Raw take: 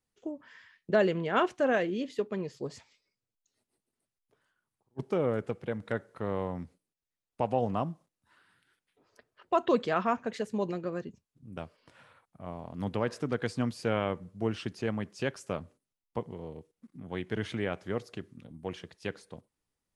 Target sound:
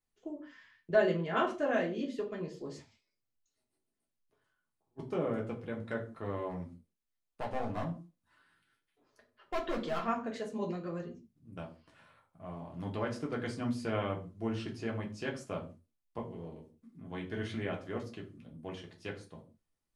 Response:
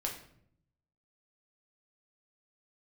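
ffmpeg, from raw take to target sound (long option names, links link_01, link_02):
-filter_complex "[0:a]asettb=1/sr,asplit=3[link_01][link_02][link_03];[link_01]atrim=end=6.504[link_04];[link_02]atrim=start=6.5:end=10.06,asetpts=PTS-STARTPTS,afade=type=in:duration=0.004:curve=qsin,afade=type=out:start_time=3.556:duration=0.004:curve=qsin,asoftclip=type=hard:threshold=-27dB[link_05];[link_03]atrim=start=10.056[link_06];[link_04][link_05]acrossfade=duration=0.004:curve1=hsin:curve2=qsin[link_07];[link_07][link_06]acrossfade=duration=0.004:curve1=qsin:curve2=hsin[link_08];[1:a]atrim=start_sample=2205,afade=type=out:start_time=0.42:duration=0.01,atrim=end_sample=18963,asetrate=88200,aresample=44100[link_09];[link_08][link_09]afir=irnorm=-1:irlink=0"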